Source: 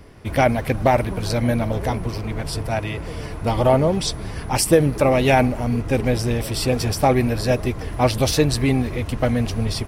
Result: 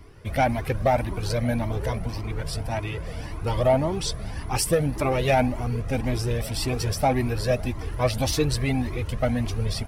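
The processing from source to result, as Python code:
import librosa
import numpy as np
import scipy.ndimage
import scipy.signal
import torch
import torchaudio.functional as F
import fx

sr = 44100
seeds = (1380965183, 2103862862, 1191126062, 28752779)

y = 10.0 ** (-7.0 / 20.0) * np.tanh(x / 10.0 ** (-7.0 / 20.0))
y = fx.comb_cascade(y, sr, direction='rising', hz=1.8)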